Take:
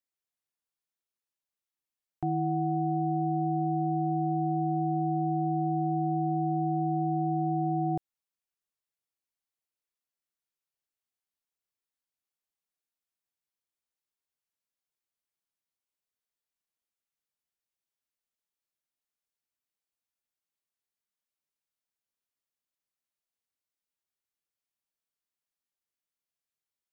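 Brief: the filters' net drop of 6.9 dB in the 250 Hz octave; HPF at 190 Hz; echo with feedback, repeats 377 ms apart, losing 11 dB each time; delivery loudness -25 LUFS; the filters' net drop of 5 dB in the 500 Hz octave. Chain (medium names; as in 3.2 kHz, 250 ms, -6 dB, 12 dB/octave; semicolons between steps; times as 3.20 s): high-pass 190 Hz; peaking EQ 250 Hz -8 dB; peaking EQ 500 Hz -3 dB; feedback delay 377 ms, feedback 28%, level -11 dB; trim +7.5 dB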